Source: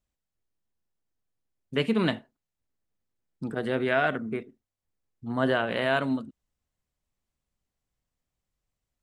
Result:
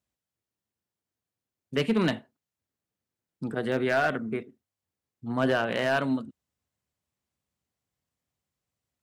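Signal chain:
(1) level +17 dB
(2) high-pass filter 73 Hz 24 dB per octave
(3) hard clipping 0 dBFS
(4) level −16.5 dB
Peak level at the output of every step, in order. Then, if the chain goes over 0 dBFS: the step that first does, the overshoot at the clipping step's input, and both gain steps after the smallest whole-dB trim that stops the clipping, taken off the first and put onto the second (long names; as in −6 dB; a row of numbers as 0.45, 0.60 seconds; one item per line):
+7.0, +7.5, 0.0, −16.5 dBFS
step 1, 7.5 dB
step 1 +9 dB, step 4 −8.5 dB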